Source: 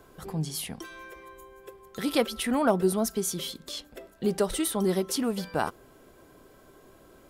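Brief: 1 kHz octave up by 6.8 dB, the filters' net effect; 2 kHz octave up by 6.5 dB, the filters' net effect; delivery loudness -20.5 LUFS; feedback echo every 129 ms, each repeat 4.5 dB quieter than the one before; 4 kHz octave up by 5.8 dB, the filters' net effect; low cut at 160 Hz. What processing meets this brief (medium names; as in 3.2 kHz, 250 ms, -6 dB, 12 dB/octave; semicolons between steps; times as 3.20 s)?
high-pass 160 Hz; peaking EQ 1 kHz +7.5 dB; peaking EQ 2 kHz +4.5 dB; peaking EQ 4 kHz +5.5 dB; feedback delay 129 ms, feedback 60%, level -4.5 dB; trim +4.5 dB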